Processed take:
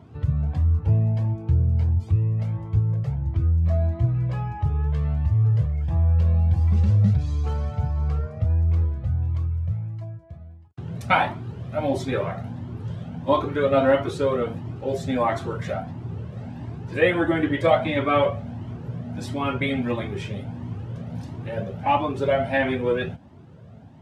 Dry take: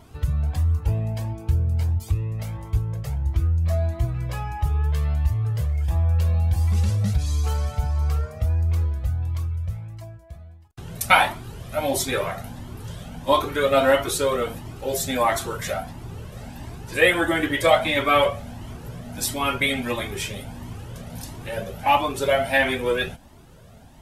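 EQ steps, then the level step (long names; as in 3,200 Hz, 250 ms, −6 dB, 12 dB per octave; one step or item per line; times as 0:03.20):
high-pass filter 93 Hz 24 dB per octave
head-to-tape spacing loss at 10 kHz 22 dB
low-shelf EQ 310 Hz +9 dB
−1.5 dB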